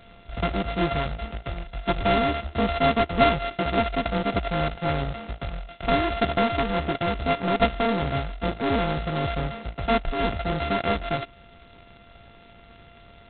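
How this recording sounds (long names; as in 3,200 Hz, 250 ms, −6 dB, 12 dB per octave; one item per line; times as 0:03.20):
a buzz of ramps at a fixed pitch in blocks of 64 samples
G.726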